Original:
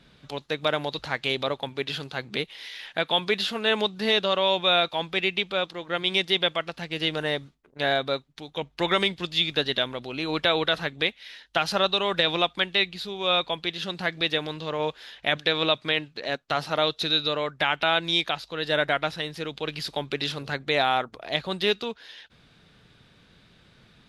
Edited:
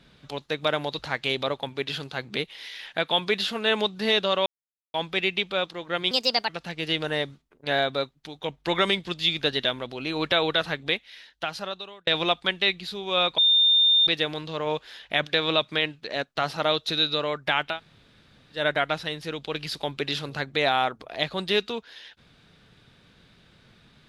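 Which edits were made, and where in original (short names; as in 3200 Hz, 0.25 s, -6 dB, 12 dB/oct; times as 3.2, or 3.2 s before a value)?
4.46–4.94 mute
6.11–6.62 speed 134%
10.95–12.2 fade out
13.51–14.2 bleep 3620 Hz -15.5 dBFS
17.85–18.71 room tone, crossfade 0.16 s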